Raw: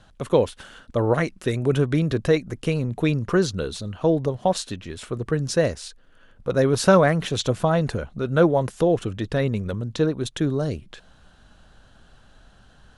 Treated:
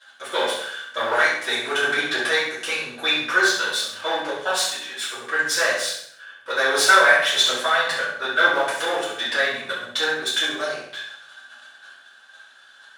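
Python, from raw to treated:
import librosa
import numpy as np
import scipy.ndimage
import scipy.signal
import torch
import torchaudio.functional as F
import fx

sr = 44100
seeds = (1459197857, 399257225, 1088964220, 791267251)

p1 = np.where(x < 0.0, 10.0 ** (-7.0 / 20.0) * x, x)
p2 = scipy.signal.sosfilt(scipy.signal.butter(2, 1200.0, 'highpass', fs=sr, output='sos'), p1)
p3 = fx.level_steps(p2, sr, step_db=21)
p4 = p2 + (p3 * 10.0 ** (1.5 / 20.0))
p5 = fx.small_body(p4, sr, hz=(1600.0, 3500.0), ring_ms=35, db=13)
p6 = p5 + fx.room_flutter(p5, sr, wall_m=11.3, rt60_s=0.53, dry=0)
p7 = fx.room_shoebox(p6, sr, seeds[0], volume_m3=64.0, walls='mixed', distance_m=2.8)
y = p7 * 10.0 ** (-3.5 / 20.0)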